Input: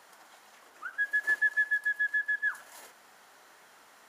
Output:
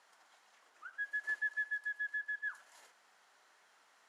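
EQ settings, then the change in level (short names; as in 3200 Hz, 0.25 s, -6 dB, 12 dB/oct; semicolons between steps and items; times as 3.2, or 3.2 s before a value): LPF 8400 Hz 12 dB/oct; low shelf 410 Hz -10.5 dB; -9.0 dB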